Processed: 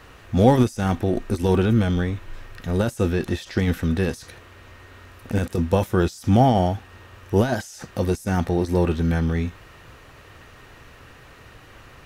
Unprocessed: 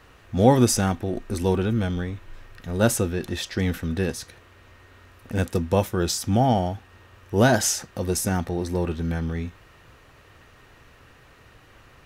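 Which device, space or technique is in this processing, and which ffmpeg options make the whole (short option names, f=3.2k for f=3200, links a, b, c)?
de-esser from a sidechain: -filter_complex "[0:a]asplit=2[a][b];[b]highpass=4.7k,apad=whole_len=531581[c];[a][c]sidechaincompress=threshold=-45dB:ratio=12:attack=1.7:release=30,volume=5.5dB"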